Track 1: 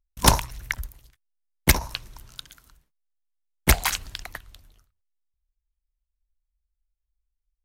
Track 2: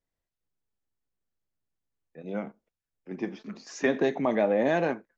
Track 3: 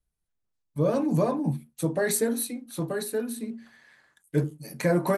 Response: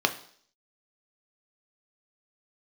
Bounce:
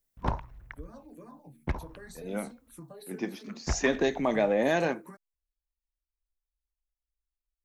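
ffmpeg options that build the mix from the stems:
-filter_complex "[0:a]lowpass=1300,volume=0.299[s0];[1:a]aemphasis=mode=production:type=75kf,volume=0.841[s1];[2:a]acompressor=threshold=0.0316:ratio=6,asplit=2[s2][s3];[s3]afreqshift=-2.6[s4];[s2][s4]amix=inputs=2:normalize=1,volume=0.299[s5];[s0][s1][s5]amix=inputs=3:normalize=0"

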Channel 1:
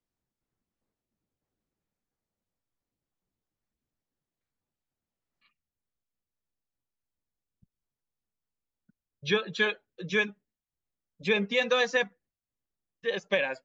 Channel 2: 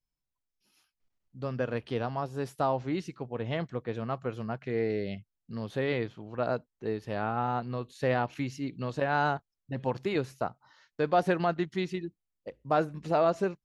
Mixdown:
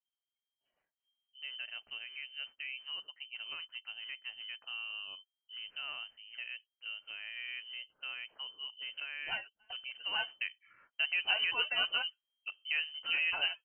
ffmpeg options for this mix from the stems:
-filter_complex "[0:a]flanger=delay=3.4:depth=6.8:regen=50:speed=0.36:shape=triangular,volume=0.447[s0];[1:a]alimiter=limit=0.075:level=0:latency=1:release=351,volume=0.891,afade=t=in:st=9.95:d=0.36:silence=0.375837,asplit=2[s1][s2];[s2]apad=whole_len=601726[s3];[s0][s3]sidechaingate=range=0.0224:threshold=0.00141:ratio=16:detection=peak[s4];[s4][s1]amix=inputs=2:normalize=0,lowpass=f=2700:t=q:w=0.5098,lowpass=f=2700:t=q:w=0.6013,lowpass=f=2700:t=q:w=0.9,lowpass=f=2700:t=q:w=2.563,afreqshift=-3200"

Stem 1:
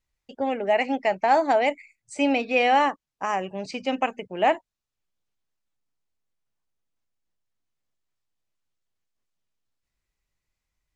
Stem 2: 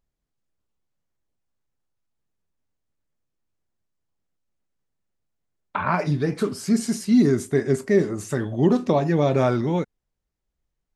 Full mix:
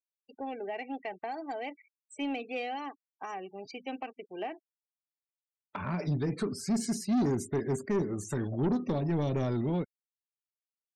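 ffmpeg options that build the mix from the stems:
-filter_complex "[0:a]aecho=1:1:2.6:0.5,alimiter=limit=0.299:level=0:latency=1:release=382,volume=0.335[s0];[1:a]volume=0.596[s1];[s0][s1]amix=inputs=2:normalize=0,afftfilt=real='re*gte(hypot(re,im),0.00631)':imag='im*gte(hypot(re,im),0.00631)':win_size=1024:overlap=0.75,acrossover=split=440|3000[s2][s3][s4];[s3]acompressor=threshold=0.0126:ratio=6[s5];[s2][s5][s4]amix=inputs=3:normalize=0,asoftclip=type=tanh:threshold=0.0668"

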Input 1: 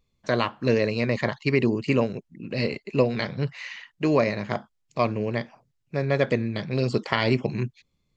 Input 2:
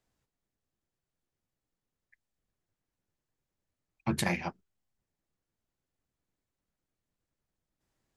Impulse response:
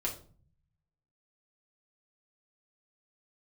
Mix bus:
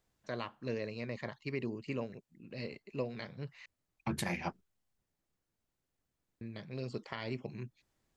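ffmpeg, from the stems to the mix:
-filter_complex "[0:a]volume=0.158,asplit=3[s0][s1][s2];[s0]atrim=end=3.66,asetpts=PTS-STARTPTS,afade=t=out:st=3.656:d=0.004:c=hsin[s3];[s1]atrim=start=3.66:end=6.41,asetpts=PTS-STARTPTS,volume=0[s4];[s2]atrim=start=6.41,asetpts=PTS-STARTPTS,afade=t=in:d=0.004:c=hsin[s5];[s3][s4][s5]concat=n=3:v=0:a=1[s6];[1:a]volume=1.12[s7];[s6][s7]amix=inputs=2:normalize=0,alimiter=limit=0.075:level=0:latency=1:release=321"

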